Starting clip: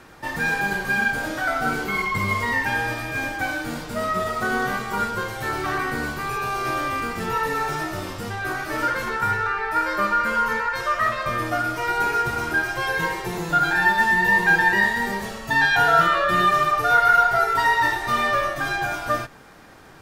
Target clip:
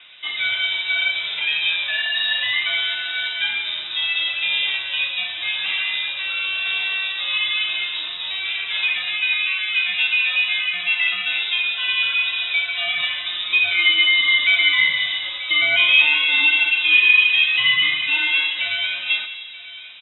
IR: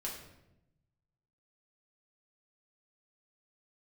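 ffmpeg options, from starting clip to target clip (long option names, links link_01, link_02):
-filter_complex "[0:a]asplit=2[link_01][link_02];[link_02]adelay=932.9,volume=-13dB,highshelf=frequency=4000:gain=-21[link_03];[link_01][link_03]amix=inputs=2:normalize=0,asplit=2[link_04][link_05];[1:a]atrim=start_sample=2205,asetrate=22491,aresample=44100[link_06];[link_05][link_06]afir=irnorm=-1:irlink=0,volume=-13dB[link_07];[link_04][link_07]amix=inputs=2:normalize=0,lowpass=frequency=3300:width_type=q:width=0.5098,lowpass=frequency=3300:width_type=q:width=0.6013,lowpass=frequency=3300:width_type=q:width=0.9,lowpass=frequency=3300:width_type=q:width=2.563,afreqshift=-3900"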